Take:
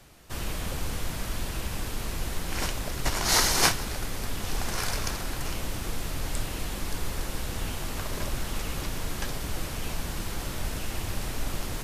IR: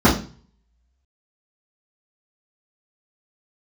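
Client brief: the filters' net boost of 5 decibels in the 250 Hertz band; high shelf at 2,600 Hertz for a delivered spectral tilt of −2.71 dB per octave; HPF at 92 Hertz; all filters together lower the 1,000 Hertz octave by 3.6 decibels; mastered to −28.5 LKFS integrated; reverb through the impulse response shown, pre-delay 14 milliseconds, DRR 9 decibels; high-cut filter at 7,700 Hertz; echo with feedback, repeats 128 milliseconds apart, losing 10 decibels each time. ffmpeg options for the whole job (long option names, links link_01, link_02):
-filter_complex "[0:a]highpass=92,lowpass=7700,equalizer=frequency=250:width_type=o:gain=7,equalizer=frequency=1000:width_type=o:gain=-6.5,highshelf=frequency=2600:gain=8,aecho=1:1:128|256|384|512:0.316|0.101|0.0324|0.0104,asplit=2[link_01][link_02];[1:a]atrim=start_sample=2205,adelay=14[link_03];[link_02][link_03]afir=irnorm=-1:irlink=0,volume=-32.5dB[link_04];[link_01][link_04]amix=inputs=2:normalize=0,volume=-1.5dB"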